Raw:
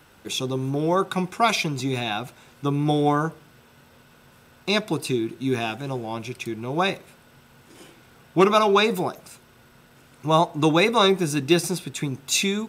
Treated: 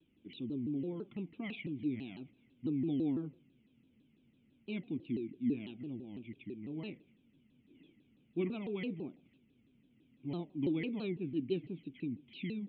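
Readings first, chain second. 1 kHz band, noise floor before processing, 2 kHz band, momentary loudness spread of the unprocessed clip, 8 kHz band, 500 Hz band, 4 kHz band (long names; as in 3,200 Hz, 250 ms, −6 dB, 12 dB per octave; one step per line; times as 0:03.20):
−35.5 dB, −54 dBFS, −23.0 dB, 13 LU, below −40 dB, −19.5 dB, −27.0 dB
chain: formant resonators in series i
pitch modulation by a square or saw wave saw down 6 Hz, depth 250 cents
level −6 dB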